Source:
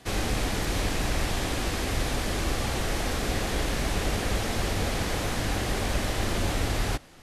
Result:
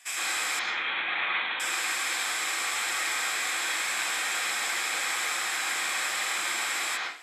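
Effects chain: 0.59–1.6 LPC vocoder at 8 kHz whisper; HPF 1200 Hz 12 dB/oct; reverb RT60 0.45 s, pre-delay 0.102 s, DRR -4.5 dB

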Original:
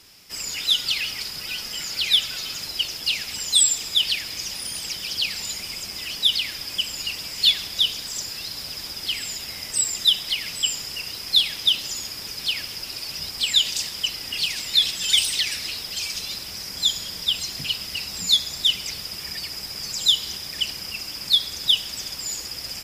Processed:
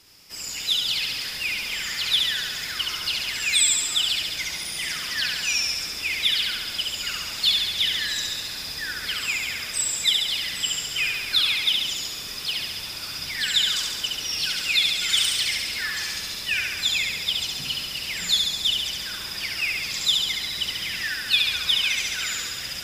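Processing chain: echoes that change speed 0.442 s, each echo -6 st, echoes 2, each echo -6 dB; flutter echo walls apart 11.9 m, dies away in 1.2 s; gain -4 dB

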